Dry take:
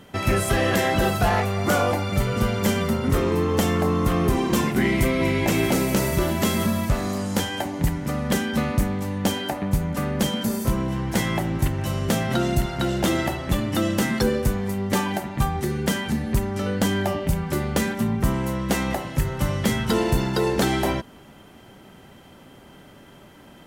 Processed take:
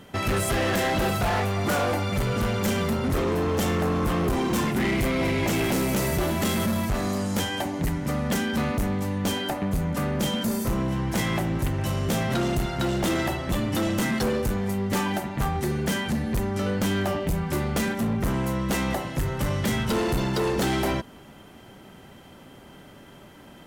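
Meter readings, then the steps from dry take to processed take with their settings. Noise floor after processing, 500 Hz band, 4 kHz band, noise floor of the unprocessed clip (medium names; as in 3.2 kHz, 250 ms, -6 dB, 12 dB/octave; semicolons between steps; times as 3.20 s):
-48 dBFS, -2.5 dB, -1.5 dB, -48 dBFS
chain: overload inside the chain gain 21 dB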